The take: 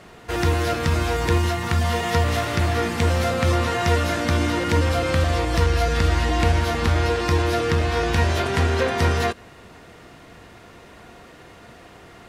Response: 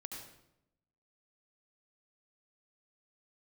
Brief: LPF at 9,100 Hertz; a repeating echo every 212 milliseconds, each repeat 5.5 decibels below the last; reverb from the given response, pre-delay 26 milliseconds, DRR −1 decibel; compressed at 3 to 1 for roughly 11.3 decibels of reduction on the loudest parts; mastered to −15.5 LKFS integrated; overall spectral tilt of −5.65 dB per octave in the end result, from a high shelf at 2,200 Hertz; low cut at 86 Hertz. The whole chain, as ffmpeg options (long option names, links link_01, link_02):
-filter_complex "[0:a]highpass=86,lowpass=9100,highshelf=frequency=2200:gain=-8,acompressor=threshold=-33dB:ratio=3,aecho=1:1:212|424|636|848|1060|1272|1484:0.531|0.281|0.149|0.079|0.0419|0.0222|0.0118,asplit=2[link_01][link_02];[1:a]atrim=start_sample=2205,adelay=26[link_03];[link_02][link_03]afir=irnorm=-1:irlink=0,volume=3.5dB[link_04];[link_01][link_04]amix=inputs=2:normalize=0,volume=13dB"